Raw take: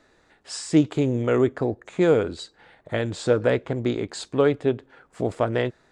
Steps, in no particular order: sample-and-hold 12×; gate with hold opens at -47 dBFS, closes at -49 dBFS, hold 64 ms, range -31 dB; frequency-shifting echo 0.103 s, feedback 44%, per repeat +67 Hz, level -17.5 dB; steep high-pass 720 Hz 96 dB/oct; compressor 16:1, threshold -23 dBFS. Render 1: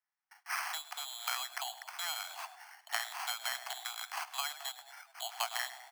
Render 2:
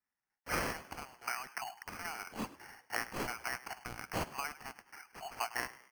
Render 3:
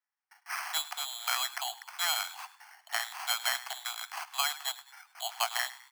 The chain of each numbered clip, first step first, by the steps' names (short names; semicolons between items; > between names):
sample-and-hold > frequency-shifting echo > compressor > steep high-pass > gate with hold; compressor > steep high-pass > sample-and-hold > gate with hold > frequency-shifting echo; sample-and-hold > steep high-pass > gate with hold > frequency-shifting echo > compressor